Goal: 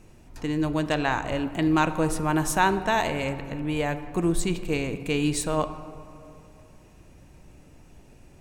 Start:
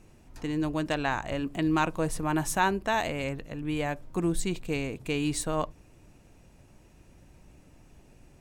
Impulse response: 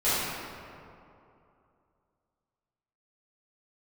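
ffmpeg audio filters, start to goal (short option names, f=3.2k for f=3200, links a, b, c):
-filter_complex "[0:a]asplit=2[a][b];[1:a]atrim=start_sample=2205,highshelf=f=11k:g=-11[c];[b][c]afir=irnorm=-1:irlink=0,volume=-24.5dB[d];[a][d]amix=inputs=2:normalize=0,volume=3dB"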